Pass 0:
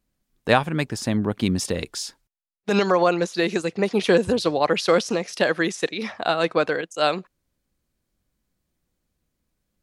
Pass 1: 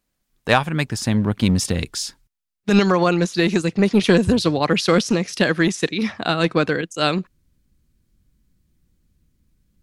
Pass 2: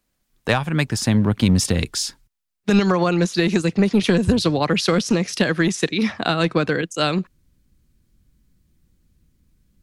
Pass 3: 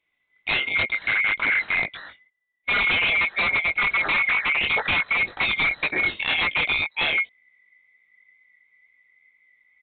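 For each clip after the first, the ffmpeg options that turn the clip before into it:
-filter_complex "[0:a]asubboost=boost=10:cutoff=210,asplit=2[a][b];[b]aeval=exprs='clip(val(0),-1,0.158)':c=same,volume=-4dB[c];[a][c]amix=inputs=2:normalize=0,lowshelf=f=320:g=-9"
-filter_complex "[0:a]acrossover=split=160[a][b];[b]acompressor=threshold=-18dB:ratio=6[c];[a][c]amix=inputs=2:normalize=0,volume=2.5dB"
-af "afftfilt=real='real(if(lt(b,920),b+92*(1-2*mod(floor(b/92),2)),b),0)':imag='imag(if(lt(b,920),b+92*(1-2*mod(floor(b/92),2)),b),0)':win_size=2048:overlap=0.75,flanger=delay=18.5:depth=2.8:speed=2,aresample=8000,aeval=exprs='0.126*(abs(mod(val(0)/0.126+3,4)-2)-1)':c=same,aresample=44100,volume=2dB"

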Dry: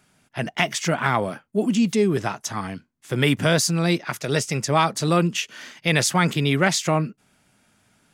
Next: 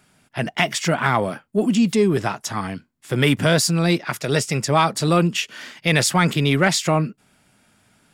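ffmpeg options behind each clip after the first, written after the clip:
-filter_complex "[0:a]bandreject=f=6.2k:w=12,asplit=2[a][b];[b]asoftclip=type=tanh:threshold=-16dB,volume=-7.5dB[c];[a][c]amix=inputs=2:normalize=0"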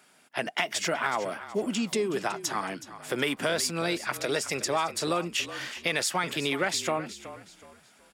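-filter_complex "[0:a]highpass=340,acompressor=threshold=-27dB:ratio=3,asplit=4[a][b][c][d];[b]adelay=371,afreqshift=-36,volume=-14dB[e];[c]adelay=742,afreqshift=-72,volume=-23.9dB[f];[d]adelay=1113,afreqshift=-108,volume=-33.8dB[g];[a][e][f][g]amix=inputs=4:normalize=0"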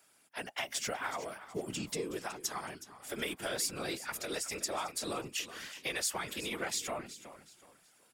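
-af "highpass=120,highshelf=f=7k:g=11.5,afftfilt=real='hypot(re,im)*cos(2*PI*random(0))':imag='hypot(re,im)*sin(2*PI*random(1))':win_size=512:overlap=0.75,volume=-4dB"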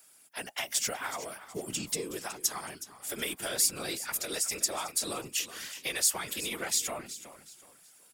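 -af "highshelf=f=5.1k:g=12"

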